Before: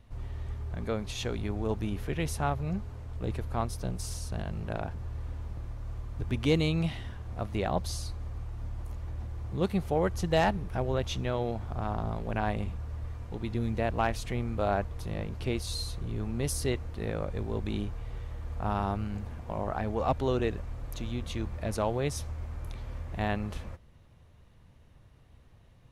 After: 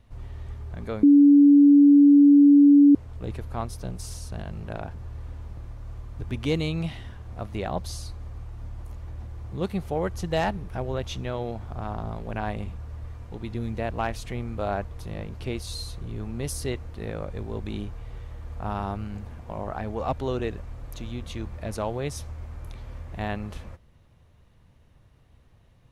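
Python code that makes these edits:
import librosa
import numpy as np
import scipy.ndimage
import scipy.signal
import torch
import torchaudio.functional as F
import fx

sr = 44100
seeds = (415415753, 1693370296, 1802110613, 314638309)

y = fx.edit(x, sr, fx.bleep(start_s=1.03, length_s=1.92, hz=286.0, db=-10.5), tone=tone)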